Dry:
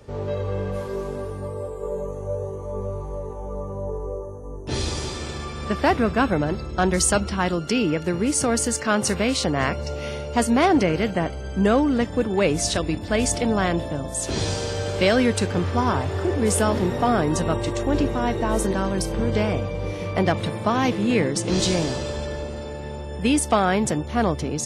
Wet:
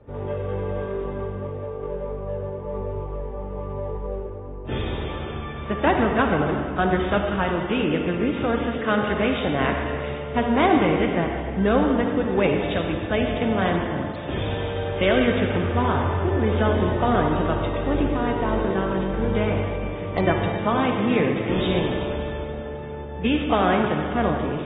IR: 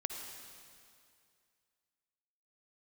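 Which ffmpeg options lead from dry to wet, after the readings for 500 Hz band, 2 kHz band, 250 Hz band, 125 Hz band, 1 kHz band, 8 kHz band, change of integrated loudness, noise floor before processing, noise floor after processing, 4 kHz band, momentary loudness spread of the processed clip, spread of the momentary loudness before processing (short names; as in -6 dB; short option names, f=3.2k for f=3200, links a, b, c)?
+0.5 dB, +1.0 dB, -0.5 dB, 0.0 dB, +0.5 dB, under -40 dB, -0.5 dB, -33 dBFS, -32 dBFS, -3.0 dB, 11 LU, 11 LU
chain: -filter_complex "[0:a]adynamicsmooth=sensitivity=6.5:basefreq=1.5k[a];[1:a]atrim=start_sample=2205,asetrate=48510,aresample=44100[b];[a][b]afir=irnorm=-1:irlink=0" -ar 32000 -c:a aac -b:a 16k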